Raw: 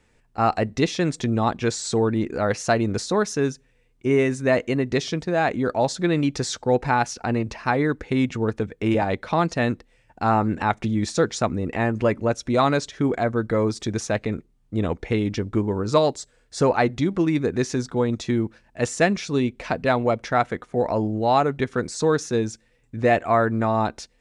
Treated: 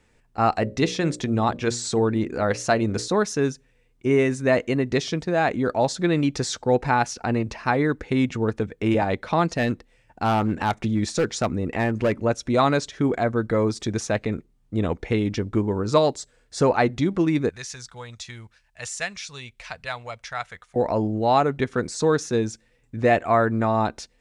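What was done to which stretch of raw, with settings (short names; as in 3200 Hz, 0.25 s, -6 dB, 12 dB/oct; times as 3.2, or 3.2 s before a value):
0.56–3.08 notches 60/120/180/240/300/360/420/480/540/600 Hz
9.47–12.22 hard clip -15.5 dBFS
17.49–20.76 passive tone stack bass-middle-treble 10-0-10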